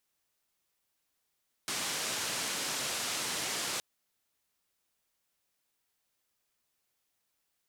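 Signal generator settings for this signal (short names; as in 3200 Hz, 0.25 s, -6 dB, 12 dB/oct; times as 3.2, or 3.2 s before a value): noise band 130–8200 Hz, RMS -35 dBFS 2.12 s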